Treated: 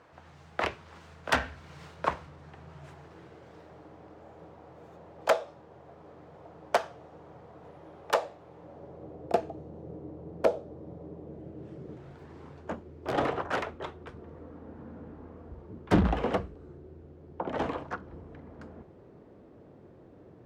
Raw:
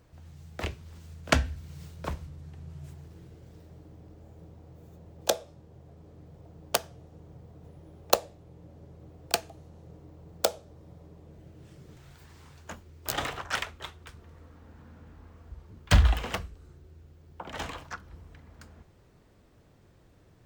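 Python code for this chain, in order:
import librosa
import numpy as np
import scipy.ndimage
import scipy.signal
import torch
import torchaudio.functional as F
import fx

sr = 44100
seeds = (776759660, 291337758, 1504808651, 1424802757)

y = fx.self_delay(x, sr, depth_ms=0.4)
y = fx.fold_sine(y, sr, drive_db=13, ceiling_db=-4.5)
y = fx.filter_sweep_bandpass(y, sr, from_hz=1100.0, to_hz=380.0, start_s=8.55, end_s=9.38, q=0.9)
y = y * librosa.db_to_amplitude(-5.0)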